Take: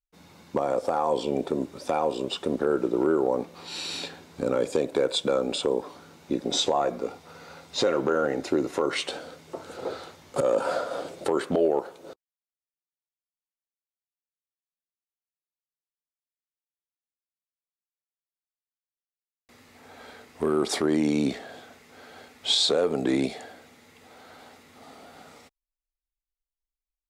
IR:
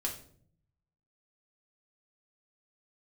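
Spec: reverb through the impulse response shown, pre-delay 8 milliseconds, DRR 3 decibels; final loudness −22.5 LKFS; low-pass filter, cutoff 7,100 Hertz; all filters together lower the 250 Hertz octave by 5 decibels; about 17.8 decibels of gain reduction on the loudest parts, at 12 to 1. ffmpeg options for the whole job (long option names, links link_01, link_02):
-filter_complex "[0:a]lowpass=7100,equalizer=frequency=250:width_type=o:gain=-7,acompressor=threshold=-39dB:ratio=12,asplit=2[link_01][link_02];[1:a]atrim=start_sample=2205,adelay=8[link_03];[link_02][link_03]afir=irnorm=-1:irlink=0,volume=-5dB[link_04];[link_01][link_04]amix=inputs=2:normalize=0,volume=20dB"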